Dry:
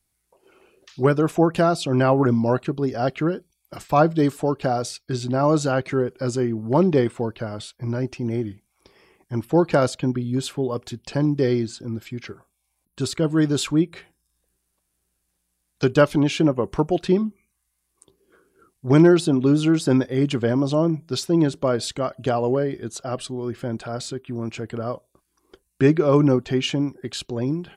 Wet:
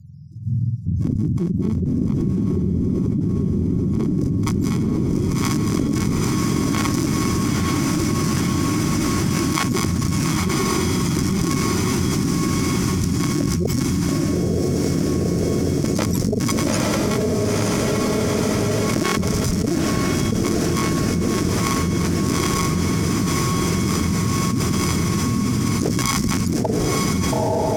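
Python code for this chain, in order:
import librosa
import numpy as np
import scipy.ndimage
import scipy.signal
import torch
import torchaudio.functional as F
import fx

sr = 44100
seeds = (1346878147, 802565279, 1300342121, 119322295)

p1 = fx.octave_mirror(x, sr, pivot_hz=550.0)
p2 = fx.high_shelf(p1, sr, hz=7600.0, db=11.0)
p3 = fx.sample_hold(p2, sr, seeds[0], rate_hz=1100.0, jitter_pct=0)
p4 = p2 + F.gain(torch.from_numpy(p3), -6.5).numpy()
p5 = scipy.signal.sosfilt(scipy.signal.cheby1(4, 1.0, [170.0, 5400.0], 'bandstop', fs=sr, output='sos'), p4)
p6 = fx.cheby_harmonics(p5, sr, harmonics=(6, 8), levels_db=(-16, -7), full_scale_db=-7.0)
p7 = fx.filter_sweep_bandpass(p6, sr, from_hz=230.0, to_hz=1300.0, start_s=3.88, end_s=4.56, q=0.85)
p8 = p7 + fx.echo_diffused(p7, sr, ms=922, feedback_pct=58, wet_db=-3.5, dry=0)
y = fx.env_flatten(p8, sr, amount_pct=100)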